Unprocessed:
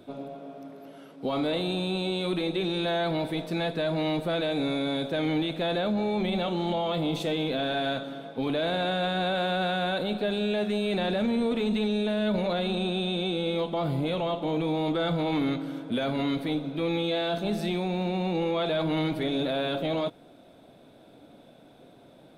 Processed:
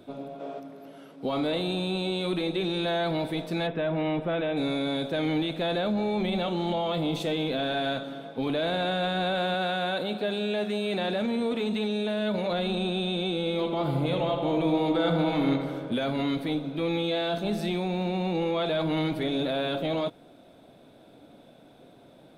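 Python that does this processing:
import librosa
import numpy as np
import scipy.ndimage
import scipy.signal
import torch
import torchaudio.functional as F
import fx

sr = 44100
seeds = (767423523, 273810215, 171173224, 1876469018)

y = fx.spec_box(x, sr, start_s=0.4, length_s=0.2, low_hz=280.0, high_hz=8300.0, gain_db=7)
y = fx.savgol(y, sr, points=25, at=(3.66, 4.56), fade=0.02)
y = fx.highpass(y, sr, hz=190.0, slope=6, at=(9.54, 12.51))
y = fx.echo_filtered(y, sr, ms=80, feedback_pct=76, hz=2800.0, wet_db=-6, at=(13.58, 15.93), fade=0.02)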